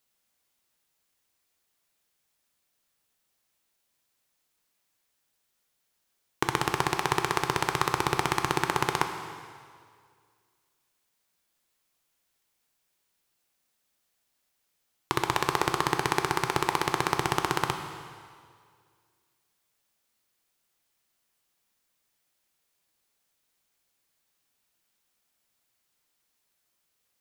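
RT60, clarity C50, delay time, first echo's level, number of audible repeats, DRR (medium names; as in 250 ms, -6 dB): 2.0 s, 7.5 dB, no echo, no echo, no echo, 6.0 dB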